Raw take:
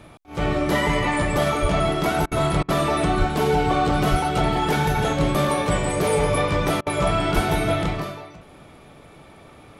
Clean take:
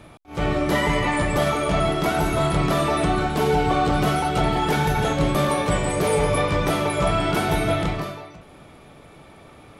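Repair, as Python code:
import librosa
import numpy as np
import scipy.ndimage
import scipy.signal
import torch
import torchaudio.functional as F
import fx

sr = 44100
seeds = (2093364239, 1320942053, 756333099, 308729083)

y = fx.fix_deplosive(x, sr, at_s=(1.61, 3.18, 4.1, 7.34))
y = fx.fix_interpolate(y, sr, at_s=(2.26, 2.63, 6.81), length_ms=54.0)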